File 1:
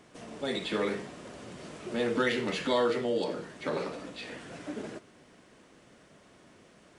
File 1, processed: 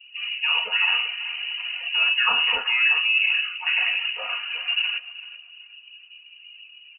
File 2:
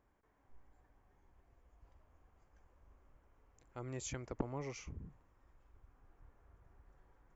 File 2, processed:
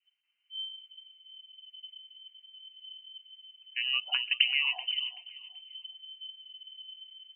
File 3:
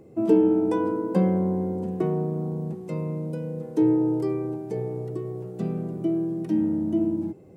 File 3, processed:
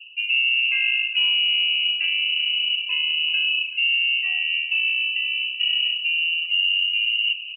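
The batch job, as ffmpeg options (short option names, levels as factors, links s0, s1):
-filter_complex "[0:a]bandreject=f=151.2:t=h:w=4,bandreject=f=302.4:t=h:w=4,bandreject=f=453.6:t=h:w=4,bandreject=f=604.8:t=h:w=4,bandreject=f=756:t=h:w=4,bandreject=f=907.2:t=h:w=4,bandreject=f=1058.4:t=h:w=4,bandreject=f=1209.6:t=h:w=4,bandreject=f=1360.8:t=h:w=4,bandreject=f=1512:t=h:w=4,bandreject=f=1663.2:t=h:w=4,bandreject=f=1814.4:t=h:w=4,asplit=2[s0][s1];[s1]adynamicsmooth=sensitivity=2:basefreq=1500,volume=1.26[s2];[s0][s2]amix=inputs=2:normalize=0,lowpass=f=2600:t=q:w=0.5098,lowpass=f=2600:t=q:w=0.6013,lowpass=f=2600:t=q:w=0.9,lowpass=f=2600:t=q:w=2.563,afreqshift=-3100,areverse,acompressor=threshold=0.0447:ratio=8,areverse,aecho=1:1:4.2:0.4,adynamicequalizer=threshold=0.00251:dfrequency=810:dqfactor=1.1:tfrequency=810:tqfactor=1.1:attack=5:release=100:ratio=0.375:range=2:mode=boostabove:tftype=bell,afftdn=nr=21:nf=-46,aecho=1:1:382|764|1146:0.15|0.0419|0.0117,volume=2.37"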